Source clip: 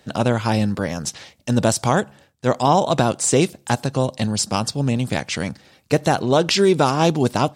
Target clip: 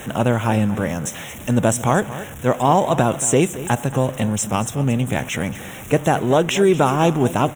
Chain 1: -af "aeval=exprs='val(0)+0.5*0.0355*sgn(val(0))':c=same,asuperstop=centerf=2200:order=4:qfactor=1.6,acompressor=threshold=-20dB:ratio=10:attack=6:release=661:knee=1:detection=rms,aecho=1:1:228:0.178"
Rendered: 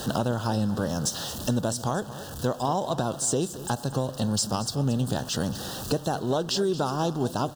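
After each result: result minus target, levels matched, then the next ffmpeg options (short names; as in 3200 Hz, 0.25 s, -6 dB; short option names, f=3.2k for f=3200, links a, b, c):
compressor: peak gain reduction +12 dB; 2000 Hz band -4.5 dB
-af "aeval=exprs='val(0)+0.5*0.0355*sgn(val(0))':c=same,asuperstop=centerf=2200:order=4:qfactor=1.6,aecho=1:1:228:0.178"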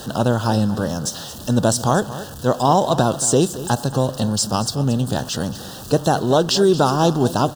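2000 Hz band -4.5 dB
-af "aeval=exprs='val(0)+0.5*0.0355*sgn(val(0))':c=same,asuperstop=centerf=4600:order=4:qfactor=1.6,aecho=1:1:228:0.178"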